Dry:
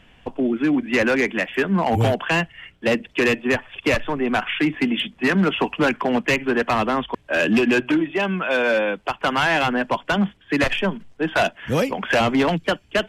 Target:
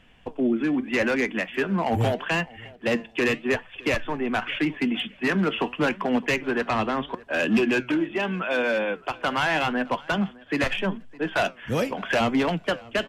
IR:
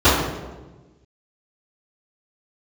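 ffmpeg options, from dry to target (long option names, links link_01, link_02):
-filter_complex "[0:a]asettb=1/sr,asplit=3[link_01][link_02][link_03];[link_01]atrim=end=6.684[link_04];[link_02]atrim=start=6.68:end=7.09,asetpts=PTS-STARTPTS,afade=type=in:duration=0.004:curve=qsin,afade=type=out:start_time=0.406:duration=0.004:curve=qsin,lowpass=7900[link_05];[link_03]atrim=start=7.086[link_06];[link_04][link_05]acrossfade=duration=0.004:curve1=hsin:curve2=qsin[link_07];[link_07][link_06]acrossfade=duration=0.004:curve1=qsin:curve2=hsin,asplit=2[link_08][link_09];[link_09]adelay=611,lowpass=frequency=4800:poles=1,volume=-22.5dB,asplit=2[link_10][link_11];[link_11]adelay=611,lowpass=frequency=4800:poles=1,volume=0.25[link_12];[link_10][link_12]amix=inputs=2:normalize=0[link_13];[link_08][link_13]amix=inputs=2:normalize=0,flanger=delay=3.9:depth=5:regen=83:speed=0.81:shape=sinusoidal"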